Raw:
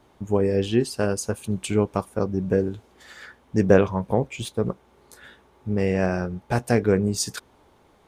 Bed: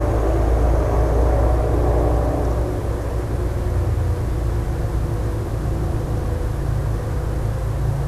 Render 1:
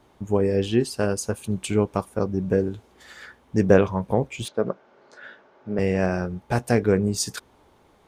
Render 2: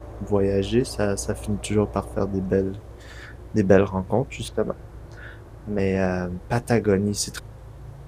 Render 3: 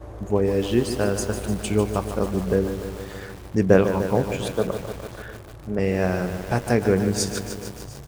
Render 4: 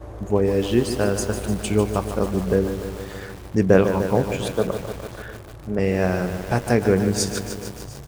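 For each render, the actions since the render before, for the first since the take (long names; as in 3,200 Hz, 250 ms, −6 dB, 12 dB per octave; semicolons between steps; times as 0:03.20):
0:04.48–0:05.79: loudspeaker in its box 200–5,500 Hz, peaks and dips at 610 Hz +9 dB, 1,500 Hz +8 dB, 3,700 Hz −4 dB
mix in bed −19.5 dB
single-tap delay 699 ms −23 dB; feedback echo at a low word length 149 ms, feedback 80%, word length 6 bits, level −9 dB
level +1.5 dB; brickwall limiter −2 dBFS, peak gain reduction 2 dB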